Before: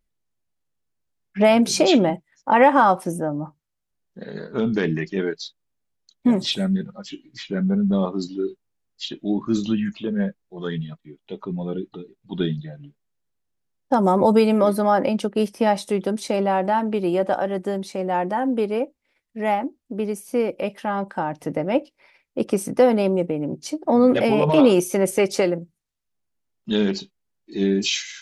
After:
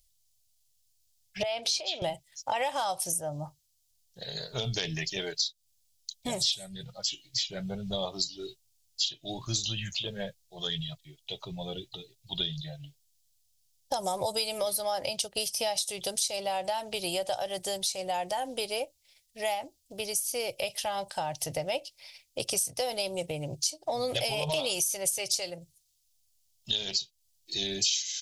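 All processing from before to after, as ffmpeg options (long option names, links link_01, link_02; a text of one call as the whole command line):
ffmpeg -i in.wav -filter_complex "[0:a]asettb=1/sr,asplit=3[link_01][link_02][link_03];[link_01]atrim=end=1.434[link_04];[link_02]atrim=start=1.43:end=2.02,asetpts=PTS-STARTPTS,afade=type=in:duration=0.004:curve=qsin,afade=type=out:start_time=0.586:duration=0.004:curve=qsin,acrossover=split=270 4000:gain=0.112 1 0.0794[link_05][link_06][link_07];[link_05][link_06][link_07]amix=inputs=3:normalize=0,acompressor=threshold=-24dB:ratio=4:attack=3.2:release=140:knee=1:detection=peak[link_08];[link_03]atrim=start=2.016[link_09];[link_04][link_08]acrossfade=duration=0.004:curve1=hsin:curve2=qsin[link_10];[link_10][link_09]acrossfade=duration=0.004:curve1=qsin:curve2=hsin,firequalizer=gain_entry='entry(120,0);entry(210,-26);entry(660,-4);entry(1100,-14);entry(1500,-13);entry(3100,7);entry(4900,14)':delay=0.05:min_phase=1,acompressor=threshold=-32dB:ratio=5,volume=4dB" out.wav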